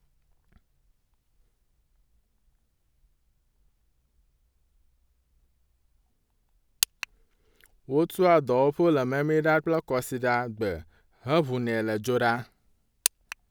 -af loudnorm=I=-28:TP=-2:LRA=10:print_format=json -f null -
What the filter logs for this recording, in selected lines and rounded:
"input_i" : "-26.4",
"input_tp" : "-3.0",
"input_lra" : "9.2",
"input_thresh" : "-37.4",